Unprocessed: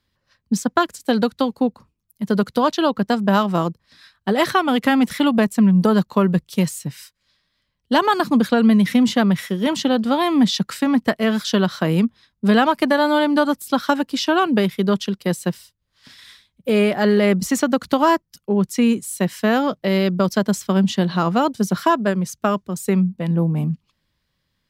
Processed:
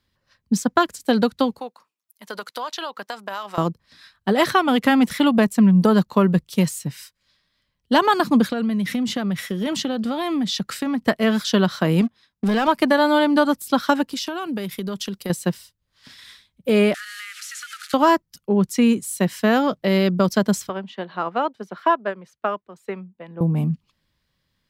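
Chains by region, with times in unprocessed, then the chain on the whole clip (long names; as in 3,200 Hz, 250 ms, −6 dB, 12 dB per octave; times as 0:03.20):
0:01.60–0:03.58: high-pass filter 790 Hz + downward compressor, threshold −25 dBFS
0:08.49–0:11.02: notch filter 970 Hz, Q 9.5 + downward compressor 5 to 1, threshold −20 dBFS
0:12.01–0:12.68: low-shelf EQ 110 Hz −10 dB + leveller curve on the samples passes 2 + downward compressor 4 to 1, threshold −18 dBFS
0:14.12–0:15.30: high-shelf EQ 6,200 Hz +10 dB + downward compressor, threshold −24 dBFS
0:16.94–0:17.94: linear delta modulator 64 kbit/s, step −27 dBFS + linear-phase brick-wall high-pass 1,200 Hz + downward compressor 5 to 1, threshold −32 dBFS
0:20.69–0:23.41: three-way crossover with the lows and the highs turned down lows −16 dB, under 350 Hz, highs −20 dB, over 3,300 Hz + expander for the loud parts, over −31 dBFS
whole clip: no processing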